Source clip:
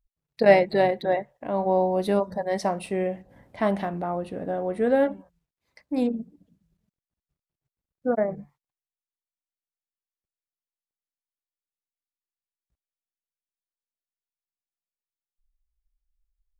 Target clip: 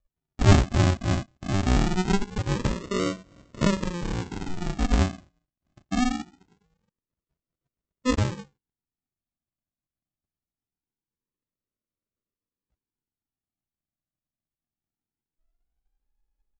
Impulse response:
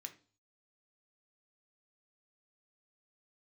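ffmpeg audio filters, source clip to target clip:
-af "aemphasis=mode=production:type=50kf,aresample=16000,acrusher=samples=27:mix=1:aa=0.000001:lfo=1:lforange=16.2:lforate=0.23,aresample=44100"

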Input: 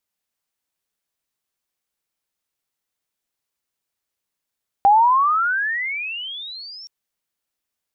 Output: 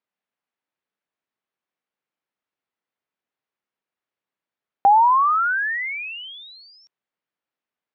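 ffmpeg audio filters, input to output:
ffmpeg -i in.wav -af "highpass=150,lowpass=2400" out.wav

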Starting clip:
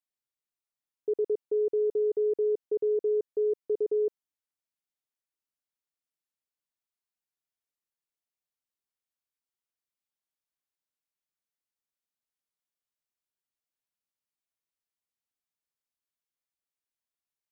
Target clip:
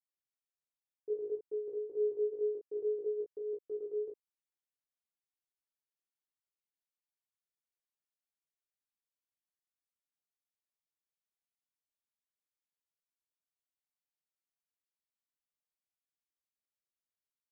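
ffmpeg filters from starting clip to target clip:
ffmpeg -i in.wav -filter_complex "[0:a]asplit=3[link_01][link_02][link_03];[link_01]afade=type=out:start_time=3.58:duration=0.02[link_04];[link_02]acompressor=threshold=-28dB:ratio=6,afade=type=in:start_time=3.58:duration=0.02,afade=type=out:start_time=4:duration=0.02[link_05];[link_03]afade=type=in:start_time=4:duration=0.02[link_06];[link_04][link_05][link_06]amix=inputs=3:normalize=0,flanger=delay=15:depth=7.5:speed=0.57,aecho=1:1:19|36:0.562|0.596,volume=-9dB" out.wav

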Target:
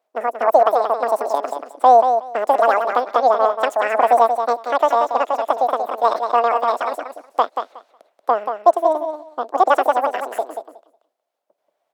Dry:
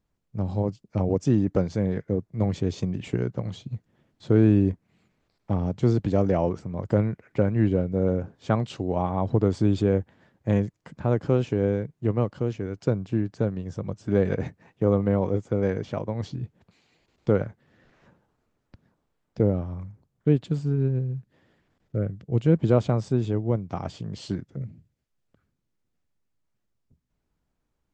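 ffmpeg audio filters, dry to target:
ffmpeg -i in.wav -filter_complex "[0:a]asetrate=103194,aresample=44100,highpass=frequency=650:width_type=q:width=4.9,asplit=2[link_01][link_02];[link_02]aecho=0:1:183|366|549:0.447|0.0715|0.0114[link_03];[link_01][link_03]amix=inputs=2:normalize=0,volume=2dB" out.wav

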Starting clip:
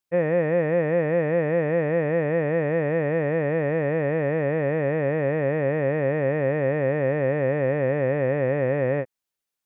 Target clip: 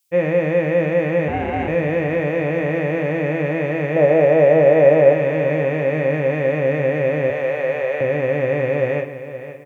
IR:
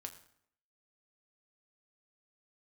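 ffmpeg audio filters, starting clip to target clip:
-filter_complex "[0:a]asettb=1/sr,asplit=3[link_01][link_02][link_03];[link_01]atrim=end=3.964[link_04];[link_02]atrim=start=3.96:end=5.13,asetpts=PTS-STARTPTS,afade=type=in:duration=0.004:curve=qsin,afade=type=out:start_time=1.166:duration=0.004:curve=qsin,equalizer=frequency=610:width=1.6:gain=13.5[link_05];[link_03]atrim=start=5.126[link_06];[link_04][link_05]acrossfade=duration=0.004:curve1=hsin:curve2=qsin[link_07];[link_07][link_06]acrossfade=duration=0.004:curve1=qsin:curve2=hsin,asettb=1/sr,asplit=3[link_08][link_09][link_10];[link_08]atrim=end=7.304[link_11];[link_09]atrim=start=7.3:end=8.01,asetpts=PTS-STARTPTS,afade=type=in:duration=0.004:curve=qsin,afade=type=out:start_time=0.706:duration=0.004:curve=qsin,highpass=frequency=470:width=0.5412,highpass=frequency=470:width=1.3066[link_12];[link_10]atrim=start=8.006[link_13];[link_11][link_12]acrossfade=duration=0.004:curve1=hsin:curve2=qsin[link_14];[link_14][link_13]acrossfade=duration=0.004:curve1=qsin:curve2=hsin,aexciter=amount=1.6:drive=9.7:freq=2300,asettb=1/sr,asplit=3[link_15][link_16][link_17];[link_15]atrim=end=1.284[link_18];[link_16]atrim=start=1.28:end=1.68,asetpts=PTS-STARTPTS,afade=type=in:duration=0.004:curve=qsin,afade=type=out:start_time=0.396:duration=0.004:curve=qsin,aeval=exprs='val(0)*sin(2*PI*240*n/s)':channel_layout=same[link_19];[link_17]atrim=start=1.676[link_20];[link_18][link_19]acrossfade=duration=0.004:curve1=hsin:curve2=qsin[link_21];[link_21][link_20]acrossfade=duration=0.004:curve1=qsin:curve2=hsin,aecho=1:1:521|1042|1563|2084:0.237|0.0854|0.0307|0.0111[link_22];[1:a]atrim=start_sample=2205,asetrate=52920,aresample=44100[link_23];[link_22][link_23]afir=irnorm=-1:irlink=0,volume=8.5dB"

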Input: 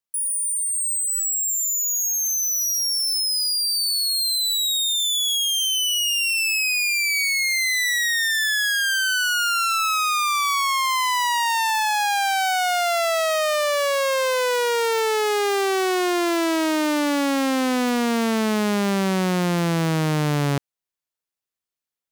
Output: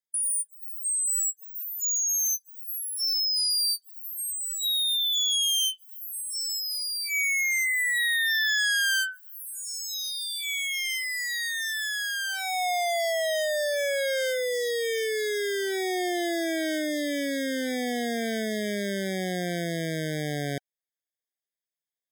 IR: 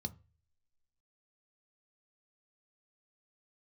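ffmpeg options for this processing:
-af "lowshelf=frequency=280:gain=-11.5,afftfilt=real='re*eq(mod(floor(b*sr/1024/770),2),0)':imag='im*eq(mod(floor(b*sr/1024/770),2),0)':win_size=1024:overlap=0.75,volume=-2.5dB"

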